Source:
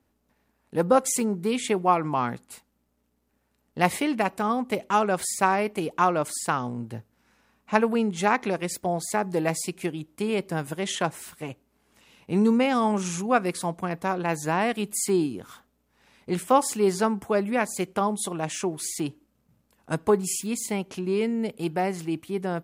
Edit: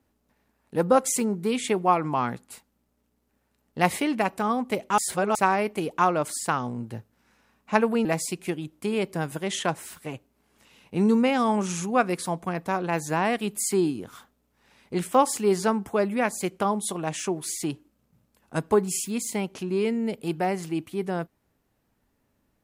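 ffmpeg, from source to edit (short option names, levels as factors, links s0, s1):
-filter_complex "[0:a]asplit=4[s0][s1][s2][s3];[s0]atrim=end=4.982[s4];[s1]atrim=start=4.978:end=5.352,asetpts=PTS-STARTPTS,areverse[s5];[s2]atrim=start=5.348:end=8.052[s6];[s3]atrim=start=9.408[s7];[s4][s5]acrossfade=d=0.004:c1=hsin:c2=hsin[s8];[s8][s6]acrossfade=d=0.004:c1=hsin:c2=hsin[s9];[s9][s7]acrossfade=d=0.004:c1=hsin:c2=hsin"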